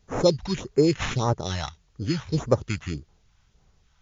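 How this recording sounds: aliases and images of a low sample rate 4700 Hz, jitter 0%; phasing stages 2, 1.7 Hz, lowest notch 370–3500 Hz; a quantiser's noise floor 12-bit, dither triangular; MP3

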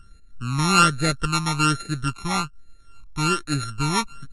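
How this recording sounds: a buzz of ramps at a fixed pitch in blocks of 32 samples; phasing stages 12, 1.2 Hz, lowest notch 490–1000 Hz; MP3

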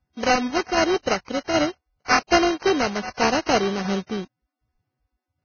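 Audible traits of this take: a buzz of ramps at a fixed pitch in blocks of 16 samples; tremolo saw down 1.3 Hz, depth 40%; aliases and images of a low sample rate 3500 Hz, jitter 0%; Vorbis

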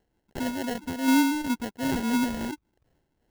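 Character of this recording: phasing stages 2, 2 Hz, lowest notch 680–1400 Hz; aliases and images of a low sample rate 1200 Hz, jitter 0%; noise-modulated level

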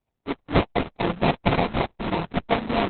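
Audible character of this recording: a buzz of ramps at a fixed pitch in blocks of 64 samples; phasing stages 4, 3.3 Hz, lowest notch 540–1500 Hz; aliases and images of a low sample rate 1600 Hz, jitter 20%; Opus

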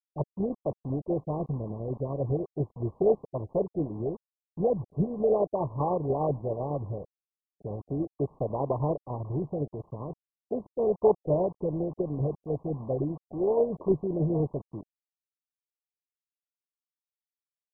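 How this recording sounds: phasing stages 4, 0.38 Hz, lowest notch 800–1600 Hz; tremolo saw down 10 Hz, depth 45%; a quantiser's noise floor 8-bit, dither none; MP2

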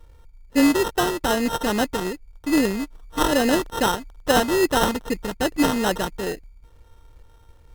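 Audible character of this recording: a buzz of ramps at a fixed pitch in blocks of 8 samples; phasing stages 2, 2.4 Hz, lowest notch 650–3300 Hz; aliases and images of a low sample rate 2300 Hz, jitter 0%; MP3

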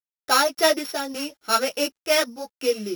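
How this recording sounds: a buzz of ramps at a fixed pitch in blocks of 8 samples; random-step tremolo; a quantiser's noise floor 12-bit, dither none; a shimmering, thickened sound

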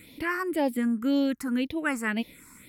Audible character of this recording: phasing stages 4, 1.9 Hz, lowest notch 540–1400 Hz

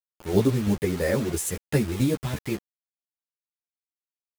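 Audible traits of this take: tremolo saw down 3 Hz, depth 60%; a quantiser's noise floor 6-bit, dither none; a shimmering, thickened sound

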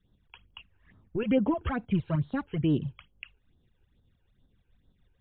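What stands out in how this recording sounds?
tremolo saw up 6.5 Hz, depth 50%; phasing stages 12, 2.3 Hz, lowest notch 190–2400 Hz; MP3

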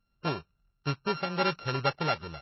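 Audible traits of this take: a buzz of ramps at a fixed pitch in blocks of 32 samples; tremolo triangle 2.2 Hz, depth 35%; MP3

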